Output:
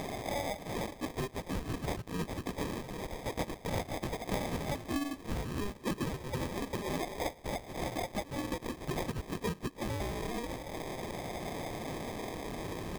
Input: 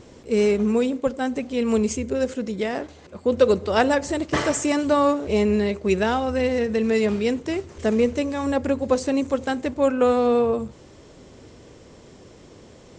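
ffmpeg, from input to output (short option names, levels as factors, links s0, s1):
-filter_complex "[0:a]afftfilt=real='re*pow(10,20/40*sin(2*PI*(1.4*log(max(b,1)*sr/1024/100)/log(2)-(-0.27)*(pts-256)/sr)))':imag='im*pow(10,20/40*sin(2*PI*(1.4*log(max(b,1)*sr/1024/100)/log(2)-(-0.27)*(pts-256)/sr)))':win_size=1024:overlap=0.75,highpass=f=1500:w=0.5412,highpass=f=1500:w=1.3066,asplit=2[s0][s1];[s1]acompressor=mode=upward:threshold=0.0316:ratio=2.5,volume=0.944[s2];[s0][s2]amix=inputs=2:normalize=0,asplit=3[s3][s4][s5];[s4]asetrate=29433,aresample=44100,atempo=1.49831,volume=0.224[s6];[s5]asetrate=66075,aresample=44100,atempo=0.66742,volume=0.631[s7];[s3][s6][s7]amix=inputs=3:normalize=0,acrusher=samples=31:mix=1:aa=0.000001,acompressor=threshold=0.0224:ratio=6"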